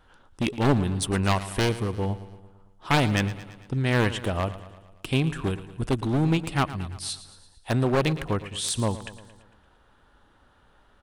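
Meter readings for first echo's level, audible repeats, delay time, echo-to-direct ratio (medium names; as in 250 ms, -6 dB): -15.0 dB, 5, 113 ms, -13.0 dB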